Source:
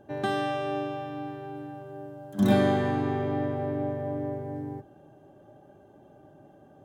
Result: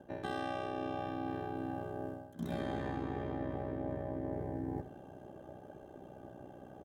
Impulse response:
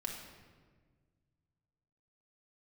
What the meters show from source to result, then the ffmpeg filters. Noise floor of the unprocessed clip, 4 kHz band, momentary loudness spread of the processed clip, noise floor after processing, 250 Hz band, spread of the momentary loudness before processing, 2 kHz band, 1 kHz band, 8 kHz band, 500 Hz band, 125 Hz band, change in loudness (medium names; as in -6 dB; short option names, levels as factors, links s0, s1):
-55 dBFS, -11.5 dB, 14 LU, -54 dBFS, -10.5 dB, 17 LU, -10.0 dB, -9.0 dB, no reading, -10.5 dB, -10.0 dB, -10.5 dB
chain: -af "areverse,acompressor=threshold=0.0126:ratio=8,areverse,aeval=exprs='val(0)*sin(2*PI*31*n/s)':c=same,aecho=1:1:76:0.251,volume=1.78"